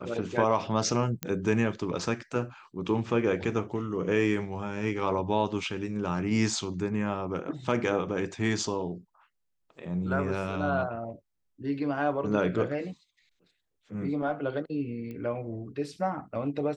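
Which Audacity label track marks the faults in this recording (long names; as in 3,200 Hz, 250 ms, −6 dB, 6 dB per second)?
1.230000	1.230000	click −14 dBFS
15.110000	15.110000	click −29 dBFS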